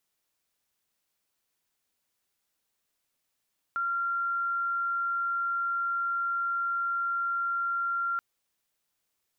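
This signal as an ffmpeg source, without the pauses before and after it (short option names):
-f lavfi -i "sine=f=1380:d=4.43:r=44100,volume=-8.44dB"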